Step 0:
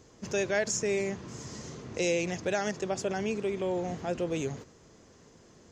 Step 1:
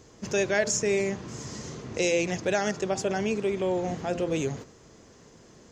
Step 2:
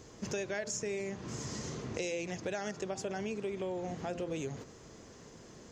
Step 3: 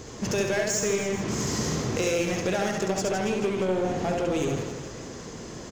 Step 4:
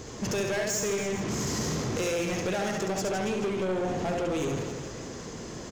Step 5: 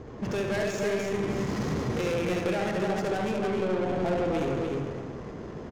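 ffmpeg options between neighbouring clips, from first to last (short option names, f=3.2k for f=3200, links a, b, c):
-af "bandreject=f=86.55:t=h:w=4,bandreject=f=173.1:t=h:w=4,bandreject=f=259.65:t=h:w=4,bandreject=f=346.2:t=h:w=4,bandreject=f=432.75:t=h:w=4,bandreject=f=519.3:t=h:w=4,bandreject=f=605.85:t=h:w=4,bandreject=f=692.4:t=h:w=4,bandreject=f=778.95:t=h:w=4,bandreject=f=865.5:t=h:w=4,bandreject=f=952.05:t=h:w=4,bandreject=f=1.0386k:t=h:w=4,bandreject=f=1.12515k:t=h:w=4,bandreject=f=1.2117k:t=h:w=4,bandreject=f=1.29825k:t=h:w=4,bandreject=f=1.3848k:t=h:w=4,bandreject=f=1.47135k:t=h:w=4,bandreject=f=1.5579k:t=h:w=4,volume=4dB"
-af "acompressor=threshold=-36dB:ratio=4"
-filter_complex "[0:a]asplit=2[a][b];[b]aeval=exprs='0.0126*(abs(mod(val(0)/0.0126+3,4)-2)-1)':c=same,volume=-6dB[c];[a][c]amix=inputs=2:normalize=0,aecho=1:1:70|161|279.3|433.1|633:0.631|0.398|0.251|0.158|0.1,volume=8dB"
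-af "asoftclip=type=tanh:threshold=-24dB"
-af "aecho=1:1:294:0.668,adynamicsmooth=sensitivity=4.5:basefreq=1.3k"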